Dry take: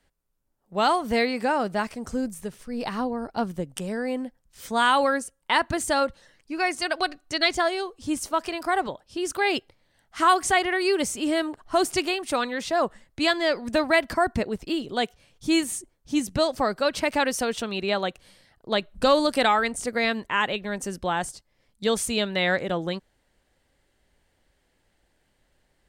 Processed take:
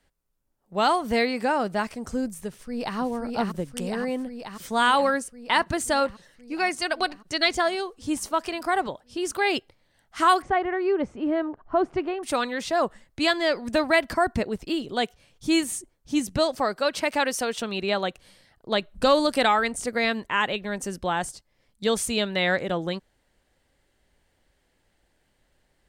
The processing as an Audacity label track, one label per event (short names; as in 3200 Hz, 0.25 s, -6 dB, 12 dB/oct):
2.480000	2.980000	echo throw 0.53 s, feedback 75%, level -2.5 dB
10.420000	12.230000	LPF 1300 Hz
16.550000	17.620000	low shelf 150 Hz -11.5 dB